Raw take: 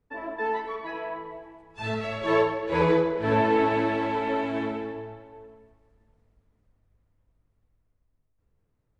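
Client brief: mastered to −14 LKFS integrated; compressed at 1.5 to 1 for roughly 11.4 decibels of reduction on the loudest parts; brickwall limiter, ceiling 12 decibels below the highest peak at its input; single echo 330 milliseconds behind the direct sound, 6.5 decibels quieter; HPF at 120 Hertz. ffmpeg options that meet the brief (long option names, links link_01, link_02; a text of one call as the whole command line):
ffmpeg -i in.wav -af "highpass=120,acompressor=threshold=-51dB:ratio=1.5,alimiter=level_in=9.5dB:limit=-24dB:level=0:latency=1,volume=-9.5dB,aecho=1:1:330:0.473,volume=27.5dB" out.wav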